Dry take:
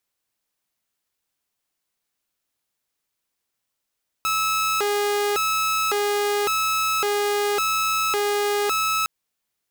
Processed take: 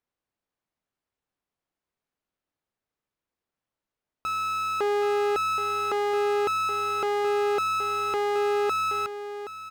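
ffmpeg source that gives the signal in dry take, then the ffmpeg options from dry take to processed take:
-f lavfi -i "aevalsrc='0.133*(2*mod((855.5*t+444.5/0.9*(0.5-abs(mod(0.9*t,1)-0.5))),1)-1)':d=4.81:s=44100"
-filter_complex "[0:a]lowpass=f=1000:p=1,asplit=2[s0][s1];[s1]aecho=0:1:773:0.282[s2];[s0][s2]amix=inputs=2:normalize=0"

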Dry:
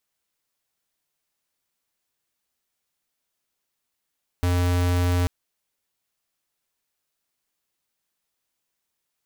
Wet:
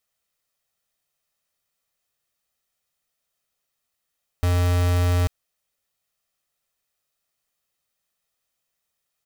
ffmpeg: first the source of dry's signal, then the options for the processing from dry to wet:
-f lavfi -i "aevalsrc='0.0891*(2*lt(mod(88.7*t,1),0.5)-1)':d=0.84:s=44100"
-af "aecho=1:1:1.6:0.4"

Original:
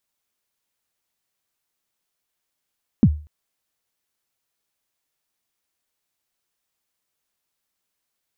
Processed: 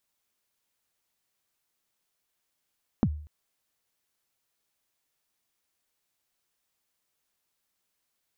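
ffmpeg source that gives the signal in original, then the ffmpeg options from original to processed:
-f lavfi -i "aevalsrc='0.501*pow(10,-3*t/0.36)*sin(2*PI*(270*0.057/log(75/270)*(exp(log(75/270)*min(t,0.057)/0.057)-1)+75*max(t-0.057,0)))':d=0.24:s=44100"
-af "acompressor=threshold=0.0708:ratio=10"

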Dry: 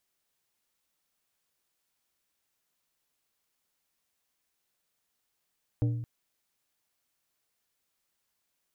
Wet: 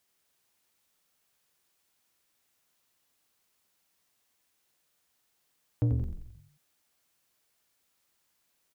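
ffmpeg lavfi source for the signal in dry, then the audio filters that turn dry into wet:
-f lavfi -i "aevalsrc='0.0794*pow(10,-3*t/0.99)*sin(2*PI*118*t)+0.0335*pow(10,-3*t/0.521)*sin(2*PI*295*t)+0.0141*pow(10,-3*t/0.375)*sin(2*PI*472*t)+0.00596*pow(10,-3*t/0.321)*sin(2*PI*590*t)+0.00251*pow(10,-3*t/0.267)*sin(2*PI*767*t)':d=0.22:s=44100"
-filter_complex "[0:a]highpass=52,asplit=2[s0][s1];[s1]asoftclip=type=tanh:threshold=0.0316,volume=0.562[s2];[s0][s2]amix=inputs=2:normalize=0,asplit=7[s3][s4][s5][s6][s7][s8][s9];[s4]adelay=88,afreqshift=-44,volume=0.501[s10];[s5]adelay=176,afreqshift=-88,volume=0.257[s11];[s6]adelay=264,afreqshift=-132,volume=0.13[s12];[s7]adelay=352,afreqshift=-176,volume=0.0668[s13];[s8]adelay=440,afreqshift=-220,volume=0.0339[s14];[s9]adelay=528,afreqshift=-264,volume=0.0174[s15];[s3][s10][s11][s12][s13][s14][s15]amix=inputs=7:normalize=0"

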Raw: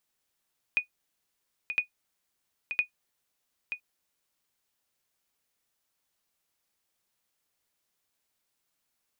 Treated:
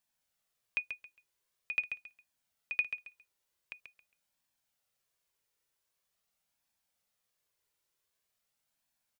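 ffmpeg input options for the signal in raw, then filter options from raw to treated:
-f lavfi -i "aevalsrc='0.158*(sin(2*PI*2470*mod(t,1.01))*exp(-6.91*mod(t,1.01)/0.11)+0.376*sin(2*PI*2470*max(mod(t,1.01)-0.93,0))*exp(-6.91*max(mod(t,1.01)-0.93,0)/0.11))':d=3.03:s=44100"
-af "flanger=delay=1.1:depth=1.1:regen=-37:speed=0.45:shape=triangular,aecho=1:1:136|272|408:0.398|0.0916|0.0211"

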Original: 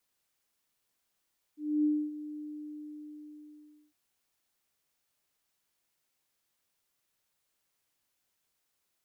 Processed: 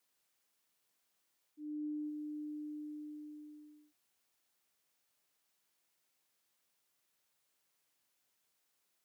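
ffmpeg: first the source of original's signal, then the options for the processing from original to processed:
-f lavfi -i "aevalsrc='0.0708*sin(2*PI*300*t)':d=2.36:s=44100,afade=t=in:d=0.27,afade=t=out:st=0.27:d=0.268:silence=0.178,afade=t=out:st=0.82:d=1.54"
-af "highpass=f=150:p=1,areverse,acompressor=threshold=0.01:ratio=6,areverse"

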